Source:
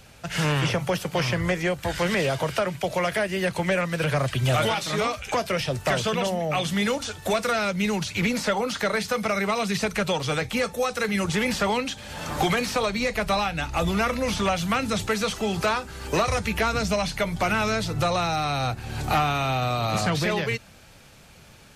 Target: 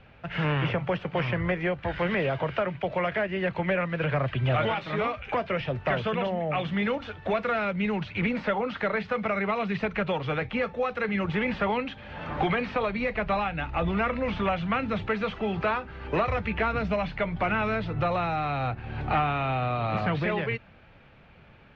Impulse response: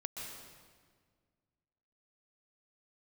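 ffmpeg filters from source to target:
-af "lowpass=f=2800:w=0.5412,lowpass=f=2800:w=1.3066,volume=0.75"

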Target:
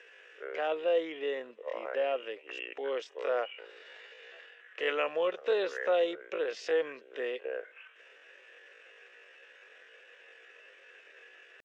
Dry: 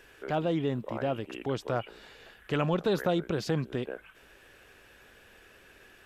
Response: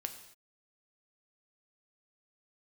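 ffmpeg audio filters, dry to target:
-af "atempo=0.52,highpass=f=430:w=0.5412,highpass=f=430:w=1.3066,equalizer=f=490:t=q:w=4:g=8,equalizer=f=850:t=q:w=4:g=-5,equalizer=f=1900:t=q:w=4:g=8,equalizer=f=2700:t=q:w=4:g=7,equalizer=f=4400:t=q:w=4:g=-7,lowpass=f=6400:w=0.5412,lowpass=f=6400:w=1.3066,volume=0.75"

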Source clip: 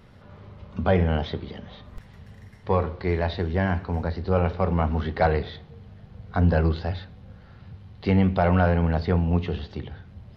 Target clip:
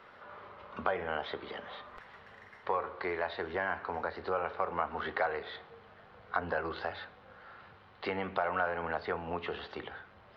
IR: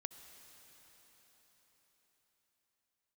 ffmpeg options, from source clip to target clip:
-filter_complex "[0:a]acrossover=split=350 4400:gain=0.0794 1 0.158[s0][s1][s2];[s0][s1][s2]amix=inputs=3:normalize=0,acompressor=threshold=0.0178:ratio=3,equalizer=f=1300:t=o:w=1.1:g=8"

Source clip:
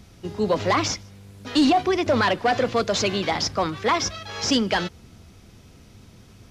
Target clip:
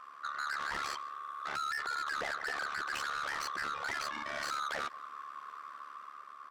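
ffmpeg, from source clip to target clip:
-filter_complex "[0:a]afftfilt=real='real(if(lt(b,960),b+48*(1-2*mod(floor(b/48),2)),b),0)':imag='imag(if(lt(b,960),b+48*(1-2*mod(floor(b/48),2)),b),0)':win_size=2048:overlap=0.75,acrossover=split=360 2400:gain=0.126 1 0.178[s0][s1][s2];[s0][s1][s2]amix=inputs=3:normalize=0,dynaudnorm=f=120:g=11:m=1.58,alimiter=limit=0.126:level=0:latency=1:release=17,acompressor=threshold=0.0282:ratio=1.5,asplit=2[s3][s4];[s4]adelay=180,highpass=300,lowpass=3400,asoftclip=type=hard:threshold=0.0335,volume=0.0501[s5];[s3][s5]amix=inputs=2:normalize=0,asoftclip=type=tanh:threshold=0.0211,aeval=exprs='val(0)*sin(2*PI*36*n/s)':c=same,volume=1.26"

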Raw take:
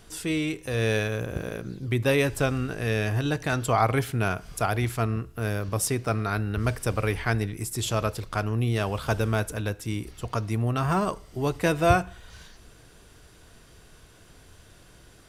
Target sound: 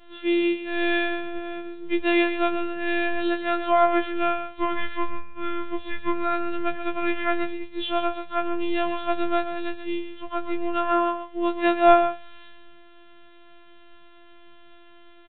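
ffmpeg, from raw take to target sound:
-filter_complex "[0:a]asettb=1/sr,asplit=3[s0][s1][s2];[s0]atrim=end=4.494[s3];[s1]atrim=start=4.49:end=6.13,asetpts=PTS-STARTPTS,afade=t=in:d=0.004:c=qsin,afade=t=out:st=1.636:d=0.004:c=qsin,afreqshift=-230[s4];[s2]atrim=start=6.126[s5];[s3][s4]acrossfade=d=0.004:c1=hsin:c2=qsin[s6];[s6][s5]acrossfade=d=0.004:c1=qsin:c2=hsin,asplit=2[s7][s8];[s8]aecho=0:1:133:0.335[s9];[s7][s9]amix=inputs=2:normalize=0,aresample=8000,aresample=44100,afftfilt=real='hypot(re,im)*cos(PI*b)':imag='0':win_size=512:overlap=0.75,asplit=2[s10][s11];[s11]aecho=0:1:68|136:0.0841|0.0135[s12];[s10][s12]amix=inputs=2:normalize=0,afftfilt=real='re*2.83*eq(mod(b,8),0)':imag='im*2.83*eq(mod(b,8),0)':win_size=2048:overlap=0.75"

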